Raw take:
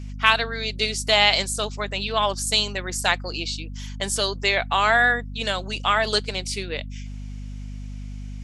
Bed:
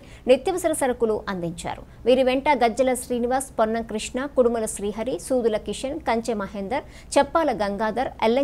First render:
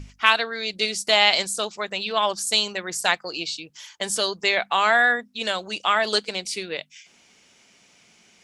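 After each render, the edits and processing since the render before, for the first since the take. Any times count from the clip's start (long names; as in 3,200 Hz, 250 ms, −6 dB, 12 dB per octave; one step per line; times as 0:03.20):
mains-hum notches 50/100/150/200/250 Hz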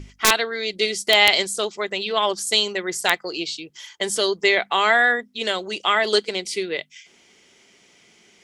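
wrap-around overflow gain 4 dB
hollow resonant body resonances 380/2,000/3,200 Hz, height 9 dB, ringing for 25 ms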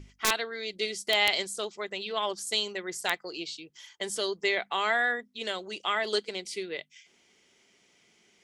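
level −9.5 dB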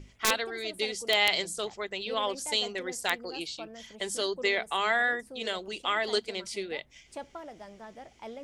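mix in bed −22.5 dB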